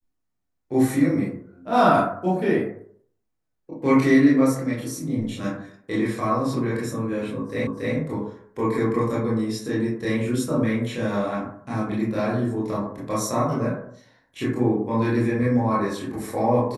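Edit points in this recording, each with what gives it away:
0:07.67: the same again, the last 0.28 s

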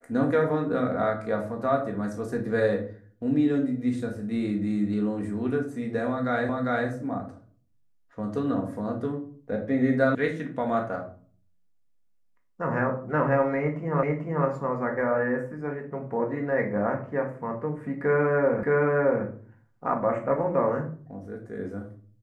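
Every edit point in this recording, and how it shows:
0:06.49: the same again, the last 0.4 s
0:10.15: cut off before it has died away
0:14.03: the same again, the last 0.44 s
0:18.63: the same again, the last 0.62 s

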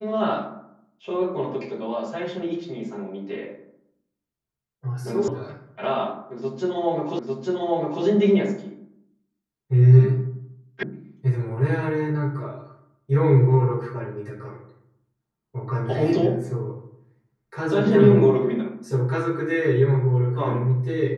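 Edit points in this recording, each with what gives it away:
0:05.28: cut off before it has died away
0:07.19: the same again, the last 0.85 s
0:10.83: cut off before it has died away

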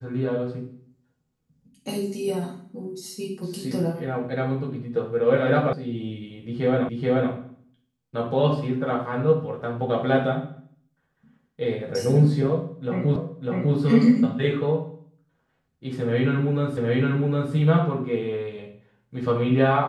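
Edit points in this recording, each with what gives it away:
0:05.73: cut off before it has died away
0:06.89: the same again, the last 0.43 s
0:13.16: the same again, the last 0.6 s
0:16.77: the same again, the last 0.76 s

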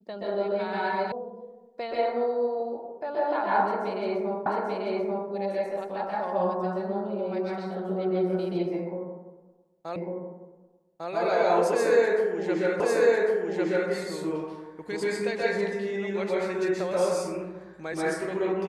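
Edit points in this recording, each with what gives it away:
0:01.12: cut off before it has died away
0:04.46: the same again, the last 0.84 s
0:09.96: the same again, the last 1.15 s
0:12.80: the same again, the last 1.1 s

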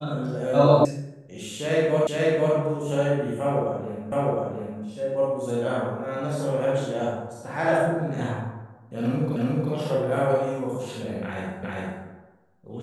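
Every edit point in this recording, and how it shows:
0:00.85: cut off before it has died away
0:02.07: the same again, the last 0.49 s
0:04.12: the same again, the last 0.71 s
0:09.36: the same again, the last 0.36 s
0:11.63: the same again, the last 0.4 s

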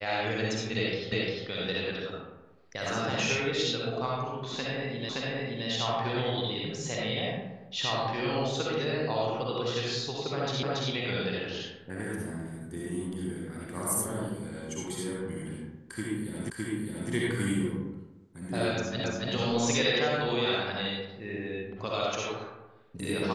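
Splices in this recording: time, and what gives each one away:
0:01.12: the same again, the last 0.35 s
0:05.09: the same again, the last 0.57 s
0:10.63: the same again, the last 0.28 s
0:16.50: the same again, the last 0.61 s
0:19.04: the same again, the last 0.28 s

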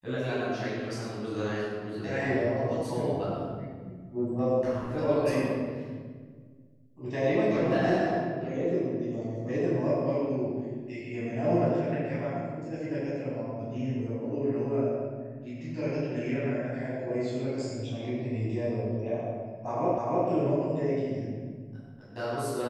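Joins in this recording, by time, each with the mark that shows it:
0:19.98: the same again, the last 0.3 s

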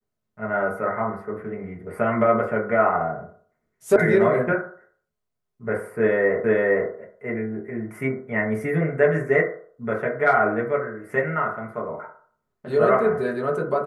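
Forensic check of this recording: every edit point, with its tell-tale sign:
0:03.96: cut off before it has died away
0:06.44: the same again, the last 0.46 s

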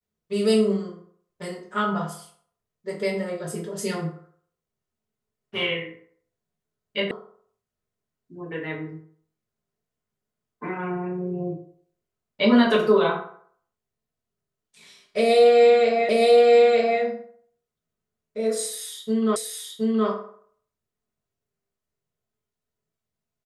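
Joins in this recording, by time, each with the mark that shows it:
0:07.11: cut off before it has died away
0:16.09: the same again, the last 0.92 s
0:19.36: the same again, the last 0.72 s

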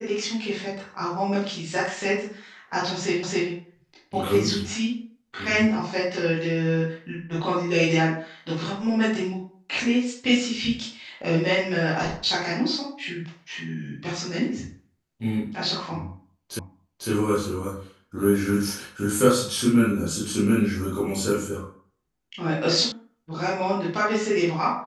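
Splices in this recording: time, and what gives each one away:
0:03.23: the same again, the last 0.27 s
0:16.59: the same again, the last 0.5 s
0:22.92: cut off before it has died away

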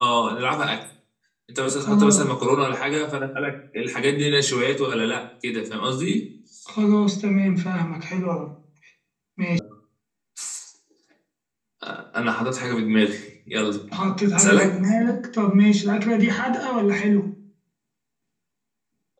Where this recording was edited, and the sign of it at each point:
0:09.59: cut off before it has died away

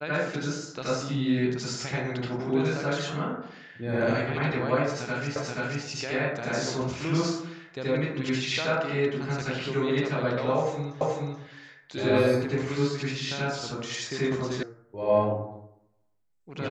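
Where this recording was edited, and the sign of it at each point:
0:05.36: the same again, the last 0.48 s
0:11.01: the same again, the last 0.43 s
0:14.63: cut off before it has died away

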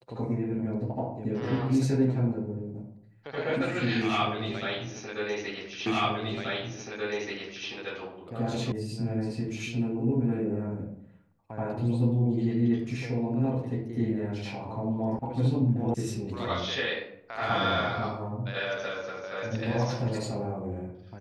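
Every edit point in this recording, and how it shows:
0:05.86: the same again, the last 1.83 s
0:08.72: cut off before it has died away
0:15.19: cut off before it has died away
0:15.94: cut off before it has died away

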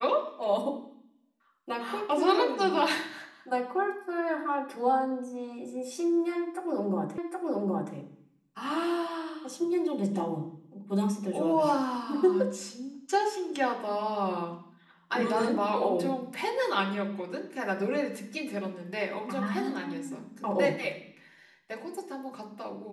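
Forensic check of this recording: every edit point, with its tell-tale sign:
0:07.18: the same again, the last 0.77 s

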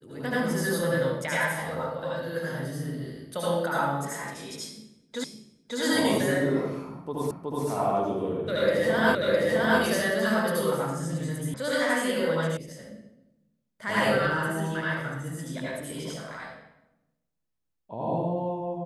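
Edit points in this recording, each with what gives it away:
0:05.24: the same again, the last 0.56 s
0:07.31: the same again, the last 0.37 s
0:09.15: the same again, the last 0.66 s
0:11.54: cut off before it has died away
0:12.57: cut off before it has died away

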